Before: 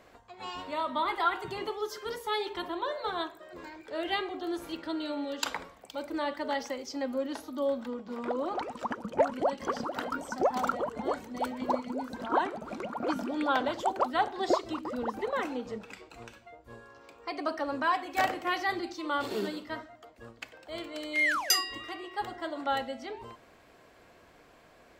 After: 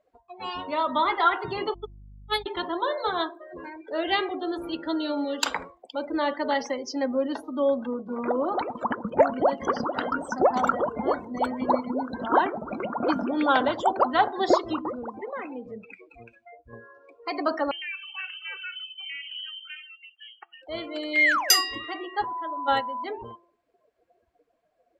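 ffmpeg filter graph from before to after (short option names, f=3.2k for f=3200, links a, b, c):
-filter_complex "[0:a]asettb=1/sr,asplit=3[a][b][c];[a]atrim=end=1.744[d];[b]atrim=start=1.74:end=2.46,asetpts=PTS-STARTPTS,afade=t=in:d=0.004:c=qsin,afade=t=out:st=0.716:d=0.004:c=qsin,aemphasis=mode=production:type=50kf,agate=range=-46dB:threshold=-29dB:ratio=16:release=100:detection=peak,aeval=exprs='val(0)+0.00282*(sin(2*PI*50*n/s)+sin(2*PI*2*50*n/s)/2+sin(2*PI*3*50*n/s)/3+sin(2*PI*4*50*n/s)/4+sin(2*PI*5*50*n/s)/5)':c=same[e];[c]atrim=start=2.456[f];[d][e]acrossfade=d=0.004:c1=hsin:c2=qsin[g];[g][f]acrossfade=d=0.004:c1=qsin:c2=hsin,asettb=1/sr,asplit=3[h][i][j];[h]atrim=end=14.924[k];[i]atrim=start=14.92:end=16.73,asetpts=PTS-STARTPTS,afade=t=in:d=0.004:c=qsin,afade=t=out:st=1.806:d=0.004:c=qsin,equalizer=f=2.4k:w=6.9:g=8,acompressor=threshold=-53dB:ratio=1.5:attack=3.2:release=140:knee=1:detection=peak[l];[j]atrim=start=16.726[m];[k][l]acrossfade=d=0.004:c1=hsin:c2=qsin[n];[n][m]acrossfade=d=0.004:c1=qsin:c2=hsin,asettb=1/sr,asplit=3[o][p][q];[o]atrim=end=17.714[r];[p]atrim=start=17.71:end=20.62,asetpts=PTS-STARTPTS,afade=t=in:d=0.004:c=qsin,afade=t=out:st=2.906:d=0.004:c=qsin,highpass=110,acompressor=threshold=-45dB:ratio=2.5:attack=3.2:release=140:knee=1:detection=peak,lowpass=f=2.9k:t=q:w=0.5098,lowpass=f=2.9k:t=q:w=0.6013,lowpass=f=2.9k:t=q:w=0.9,lowpass=f=2.9k:t=q:w=2.563,afreqshift=-3400[s];[q]atrim=start=20.616[t];[r][s]acrossfade=d=0.004:c1=hsin:c2=qsin[u];[u][t]acrossfade=d=0.004:c1=qsin:c2=hsin,asettb=1/sr,asplit=3[v][w][x];[v]atrim=end=22.244[y];[w]atrim=start=22.24:end=23.04,asetpts=PTS-STARTPTS,afade=t=in:d=0.004:c=qsin,afade=t=out:st=0.796:d=0.004:c=qsin,agate=range=-10dB:threshold=-32dB:ratio=16:release=100:detection=peak,aeval=exprs='val(0)+0.0141*sin(2*PI*1000*n/s)':c=same,acompressor=mode=upward:threshold=-35dB:ratio=2.5:attack=3.2:release=140:knee=2.83:detection=peak[z];[x]atrim=start=23.036[aa];[y][z]acrossfade=d=0.004:c1=hsin:c2=qsin[ab];[ab][aa]acrossfade=d=0.004:c1=qsin:c2=hsin,afftdn=nr=29:nf=-45,bandreject=f=343.6:t=h:w=4,bandreject=f=687.2:t=h:w=4,bandreject=f=1.0308k:t=h:w=4,volume=6.5dB"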